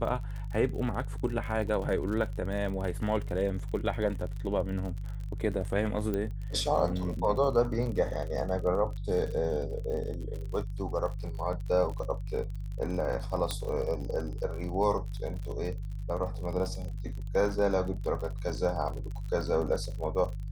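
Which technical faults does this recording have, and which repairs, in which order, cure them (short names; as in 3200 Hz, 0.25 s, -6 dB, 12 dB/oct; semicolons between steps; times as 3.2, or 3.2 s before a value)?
crackle 48/s -36 dBFS
hum 50 Hz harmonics 3 -36 dBFS
6.14 pop -20 dBFS
13.51 pop -16 dBFS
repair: de-click; de-hum 50 Hz, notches 3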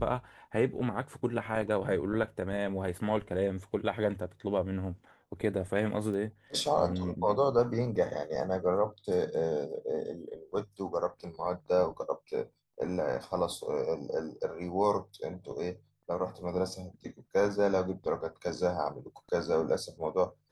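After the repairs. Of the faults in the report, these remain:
6.14 pop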